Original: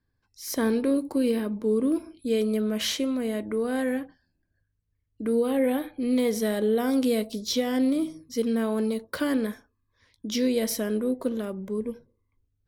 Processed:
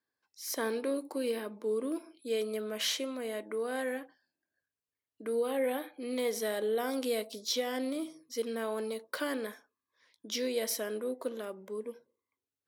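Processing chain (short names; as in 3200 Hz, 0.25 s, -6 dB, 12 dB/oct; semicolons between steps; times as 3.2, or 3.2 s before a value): HPF 440 Hz 12 dB/oct; gain -3.5 dB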